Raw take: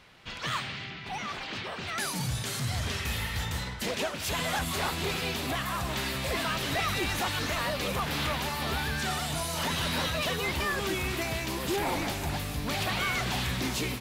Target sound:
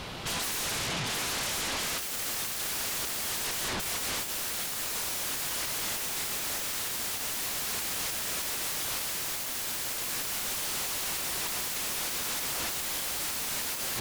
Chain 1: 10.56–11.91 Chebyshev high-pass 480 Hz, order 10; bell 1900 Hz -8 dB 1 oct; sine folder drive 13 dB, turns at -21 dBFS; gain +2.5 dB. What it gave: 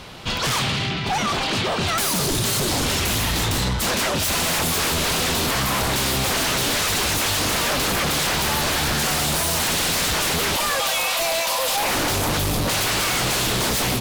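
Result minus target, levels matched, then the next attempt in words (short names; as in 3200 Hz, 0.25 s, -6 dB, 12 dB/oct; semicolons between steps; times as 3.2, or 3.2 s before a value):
sine folder: distortion -34 dB
10.56–11.91 Chebyshev high-pass 480 Hz, order 10; bell 1900 Hz -8 dB 1 oct; sine folder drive 13 dB, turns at -31.5 dBFS; gain +2.5 dB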